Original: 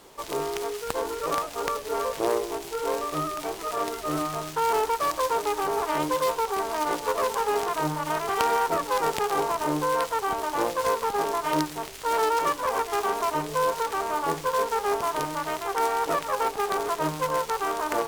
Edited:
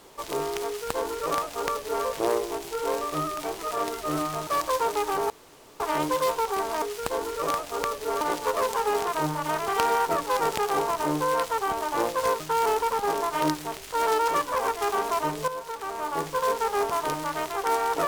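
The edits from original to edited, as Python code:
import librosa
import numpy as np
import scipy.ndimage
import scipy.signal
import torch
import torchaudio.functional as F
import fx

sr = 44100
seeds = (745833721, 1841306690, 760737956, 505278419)

y = fx.edit(x, sr, fx.duplicate(start_s=0.66, length_s=1.39, to_s=6.82),
    fx.move(start_s=4.47, length_s=0.5, to_s=11.01),
    fx.insert_room_tone(at_s=5.8, length_s=0.5),
    fx.fade_in_from(start_s=13.59, length_s=0.99, floor_db=-12.0), tone=tone)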